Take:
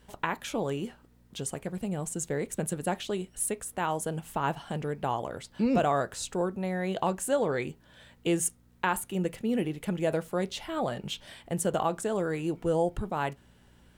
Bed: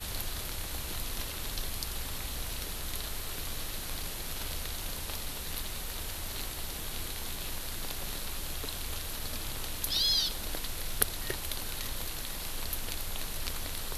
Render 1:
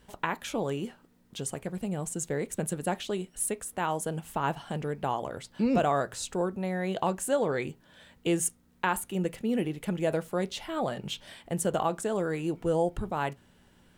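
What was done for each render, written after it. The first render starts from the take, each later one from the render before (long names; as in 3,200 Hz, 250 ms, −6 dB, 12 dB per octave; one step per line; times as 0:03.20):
hum removal 60 Hz, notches 2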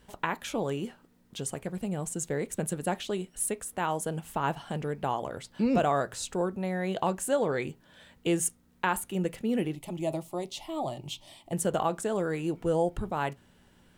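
0:09.75–0:11.53: phaser with its sweep stopped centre 310 Hz, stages 8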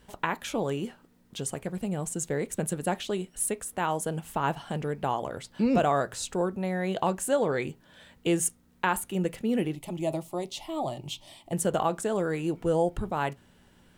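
level +1.5 dB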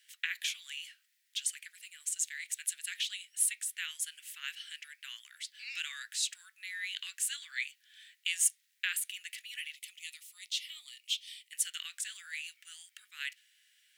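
Butterworth high-pass 1,800 Hz 48 dB per octave
dynamic equaliser 3,500 Hz, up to +5 dB, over −51 dBFS, Q 0.88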